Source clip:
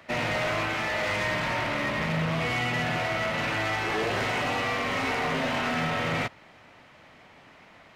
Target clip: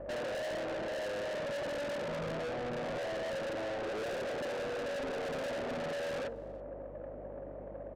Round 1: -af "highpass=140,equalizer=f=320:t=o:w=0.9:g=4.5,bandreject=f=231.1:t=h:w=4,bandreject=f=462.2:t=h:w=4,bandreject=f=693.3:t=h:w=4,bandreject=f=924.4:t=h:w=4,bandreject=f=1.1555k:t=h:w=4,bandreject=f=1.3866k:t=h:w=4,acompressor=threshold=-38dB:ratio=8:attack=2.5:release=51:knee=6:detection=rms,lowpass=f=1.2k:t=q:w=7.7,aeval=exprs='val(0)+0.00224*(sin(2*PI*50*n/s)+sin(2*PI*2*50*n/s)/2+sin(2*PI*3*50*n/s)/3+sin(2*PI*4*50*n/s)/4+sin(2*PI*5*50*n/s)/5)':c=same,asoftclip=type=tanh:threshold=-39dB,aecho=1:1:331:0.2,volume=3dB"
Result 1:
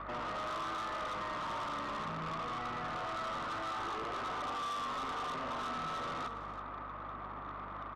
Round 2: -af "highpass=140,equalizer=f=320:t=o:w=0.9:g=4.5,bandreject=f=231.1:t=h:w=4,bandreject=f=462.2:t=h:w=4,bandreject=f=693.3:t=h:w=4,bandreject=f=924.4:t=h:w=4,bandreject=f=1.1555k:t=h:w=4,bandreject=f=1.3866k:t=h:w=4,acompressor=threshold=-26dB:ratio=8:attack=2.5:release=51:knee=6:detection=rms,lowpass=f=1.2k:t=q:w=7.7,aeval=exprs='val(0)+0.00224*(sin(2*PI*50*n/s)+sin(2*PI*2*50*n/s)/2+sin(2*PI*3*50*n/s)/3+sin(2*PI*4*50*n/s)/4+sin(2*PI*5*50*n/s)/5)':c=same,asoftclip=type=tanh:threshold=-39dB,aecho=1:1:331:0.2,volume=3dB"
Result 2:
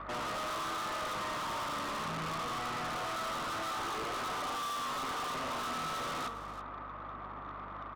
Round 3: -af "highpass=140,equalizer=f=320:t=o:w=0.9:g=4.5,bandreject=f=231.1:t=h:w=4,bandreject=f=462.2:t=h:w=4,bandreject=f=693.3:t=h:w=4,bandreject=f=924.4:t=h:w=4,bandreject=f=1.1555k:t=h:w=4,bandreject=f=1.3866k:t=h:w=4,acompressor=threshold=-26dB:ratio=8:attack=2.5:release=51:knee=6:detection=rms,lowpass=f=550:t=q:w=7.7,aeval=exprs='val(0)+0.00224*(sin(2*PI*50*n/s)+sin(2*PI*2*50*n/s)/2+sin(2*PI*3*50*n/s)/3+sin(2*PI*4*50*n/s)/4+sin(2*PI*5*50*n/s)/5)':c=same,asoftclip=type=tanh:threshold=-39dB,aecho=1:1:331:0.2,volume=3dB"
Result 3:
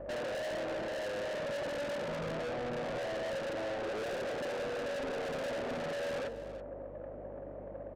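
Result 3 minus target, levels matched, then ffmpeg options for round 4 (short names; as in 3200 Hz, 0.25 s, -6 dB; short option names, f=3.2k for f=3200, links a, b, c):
echo-to-direct +11.5 dB
-af "highpass=140,equalizer=f=320:t=o:w=0.9:g=4.5,bandreject=f=231.1:t=h:w=4,bandreject=f=462.2:t=h:w=4,bandreject=f=693.3:t=h:w=4,bandreject=f=924.4:t=h:w=4,bandreject=f=1.1555k:t=h:w=4,bandreject=f=1.3866k:t=h:w=4,acompressor=threshold=-26dB:ratio=8:attack=2.5:release=51:knee=6:detection=rms,lowpass=f=550:t=q:w=7.7,aeval=exprs='val(0)+0.00224*(sin(2*PI*50*n/s)+sin(2*PI*2*50*n/s)/2+sin(2*PI*3*50*n/s)/3+sin(2*PI*4*50*n/s)/4+sin(2*PI*5*50*n/s)/5)':c=same,asoftclip=type=tanh:threshold=-39dB,aecho=1:1:331:0.0531,volume=3dB"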